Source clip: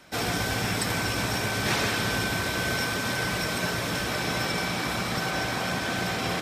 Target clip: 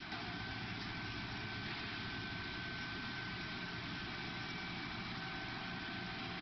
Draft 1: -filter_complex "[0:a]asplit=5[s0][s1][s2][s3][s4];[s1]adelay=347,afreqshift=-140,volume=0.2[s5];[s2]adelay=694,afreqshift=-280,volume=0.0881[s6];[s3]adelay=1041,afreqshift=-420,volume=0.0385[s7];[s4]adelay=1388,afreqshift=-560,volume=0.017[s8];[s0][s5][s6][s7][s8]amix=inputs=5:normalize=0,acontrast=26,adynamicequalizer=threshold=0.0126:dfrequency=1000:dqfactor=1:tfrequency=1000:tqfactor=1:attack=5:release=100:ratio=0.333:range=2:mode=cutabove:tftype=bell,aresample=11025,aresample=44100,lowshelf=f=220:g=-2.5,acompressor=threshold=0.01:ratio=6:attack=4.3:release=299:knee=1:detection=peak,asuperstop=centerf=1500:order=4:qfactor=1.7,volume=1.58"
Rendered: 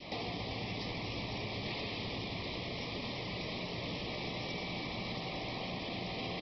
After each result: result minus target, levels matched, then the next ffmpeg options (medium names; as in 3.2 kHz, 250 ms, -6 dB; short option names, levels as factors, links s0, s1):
500 Hz band +8.0 dB; compression: peak gain reduction -5 dB
-filter_complex "[0:a]asplit=5[s0][s1][s2][s3][s4];[s1]adelay=347,afreqshift=-140,volume=0.2[s5];[s2]adelay=694,afreqshift=-280,volume=0.0881[s6];[s3]adelay=1041,afreqshift=-420,volume=0.0385[s7];[s4]adelay=1388,afreqshift=-560,volume=0.017[s8];[s0][s5][s6][s7][s8]amix=inputs=5:normalize=0,acontrast=26,adynamicequalizer=threshold=0.0126:dfrequency=1000:dqfactor=1:tfrequency=1000:tqfactor=1:attack=5:release=100:ratio=0.333:range=2:mode=cutabove:tftype=bell,aresample=11025,aresample=44100,lowshelf=f=220:g=-2.5,acompressor=threshold=0.01:ratio=6:attack=4.3:release=299:knee=1:detection=peak,asuperstop=centerf=520:order=4:qfactor=1.7,volume=1.58"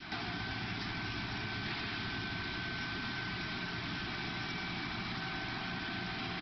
compression: peak gain reduction -5 dB
-filter_complex "[0:a]asplit=5[s0][s1][s2][s3][s4];[s1]adelay=347,afreqshift=-140,volume=0.2[s5];[s2]adelay=694,afreqshift=-280,volume=0.0881[s6];[s3]adelay=1041,afreqshift=-420,volume=0.0385[s7];[s4]adelay=1388,afreqshift=-560,volume=0.017[s8];[s0][s5][s6][s7][s8]amix=inputs=5:normalize=0,acontrast=26,adynamicequalizer=threshold=0.0126:dfrequency=1000:dqfactor=1:tfrequency=1000:tqfactor=1:attack=5:release=100:ratio=0.333:range=2:mode=cutabove:tftype=bell,aresample=11025,aresample=44100,lowshelf=f=220:g=-2.5,acompressor=threshold=0.00501:ratio=6:attack=4.3:release=299:knee=1:detection=peak,asuperstop=centerf=520:order=4:qfactor=1.7,volume=1.58"